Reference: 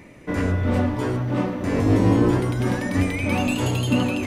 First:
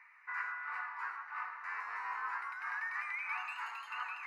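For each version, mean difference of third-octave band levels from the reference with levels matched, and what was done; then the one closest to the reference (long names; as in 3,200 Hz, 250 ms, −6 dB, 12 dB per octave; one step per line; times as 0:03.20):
18.5 dB: inverse Chebyshev high-pass filter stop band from 310 Hz, stop band 60 dB
high-frequency loss of the air 370 metres
phaser with its sweep stopped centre 1,400 Hz, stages 4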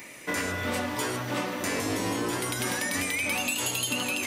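10.0 dB: spectral tilt +4.5 dB per octave
downward compressor, threshold −28 dBFS, peak gain reduction 10 dB
level +2 dB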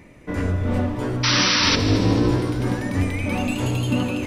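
3.0 dB: low-shelf EQ 67 Hz +8.5 dB
sound drawn into the spectrogram noise, 0:01.23–0:01.76, 880–6,000 Hz −17 dBFS
echo machine with several playback heads 74 ms, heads all three, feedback 65%, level −18 dB
level −2.5 dB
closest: third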